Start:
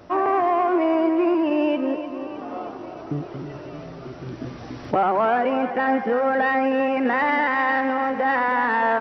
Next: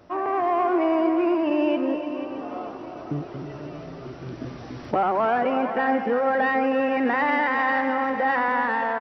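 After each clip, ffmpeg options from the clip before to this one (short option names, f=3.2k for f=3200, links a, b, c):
-af "dynaudnorm=f=110:g=7:m=4.5dB,aecho=1:1:486:0.282,volume=-6dB"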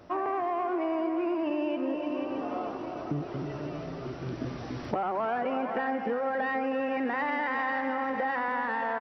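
-af "acompressor=threshold=-27dB:ratio=6"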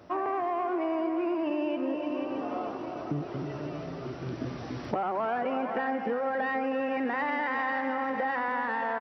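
-af "highpass=62"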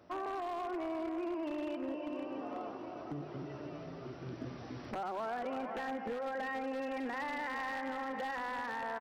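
-af "bandreject=f=50:t=h:w=6,bandreject=f=100:t=h:w=6,bandreject=f=150:t=h:w=6,aeval=exprs='0.0631*(abs(mod(val(0)/0.0631+3,4)-2)-1)':c=same,volume=-8dB"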